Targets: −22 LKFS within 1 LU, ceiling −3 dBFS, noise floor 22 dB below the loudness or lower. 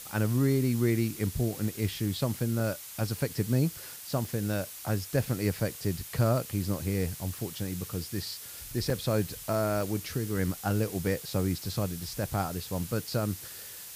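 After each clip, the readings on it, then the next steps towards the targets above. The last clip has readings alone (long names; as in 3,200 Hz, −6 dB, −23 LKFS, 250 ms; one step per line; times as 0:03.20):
number of dropouts 4; longest dropout 2.5 ms; background noise floor −44 dBFS; target noise floor −53 dBFS; integrated loudness −31.0 LKFS; sample peak −13.5 dBFS; target loudness −22.0 LKFS
→ repair the gap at 0:02.60/0:04.25/0:08.90/0:09.81, 2.5 ms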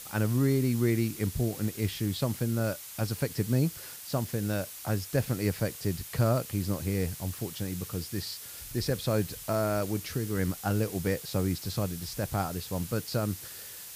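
number of dropouts 0; background noise floor −44 dBFS; target noise floor −53 dBFS
→ broadband denoise 9 dB, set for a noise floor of −44 dBFS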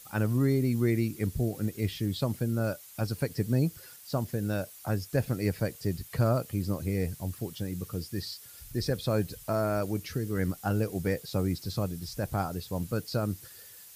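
background noise floor −50 dBFS; target noise floor −53 dBFS
→ broadband denoise 6 dB, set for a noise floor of −50 dBFS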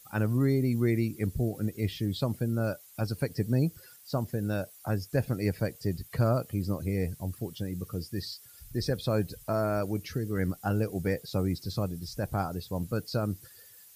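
background noise floor −54 dBFS; integrated loudness −31.0 LKFS; sample peak −14.0 dBFS; target loudness −22.0 LKFS
→ level +9 dB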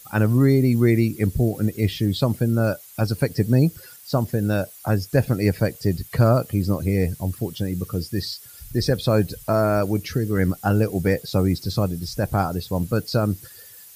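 integrated loudness −22.0 LKFS; sample peak −5.0 dBFS; background noise floor −45 dBFS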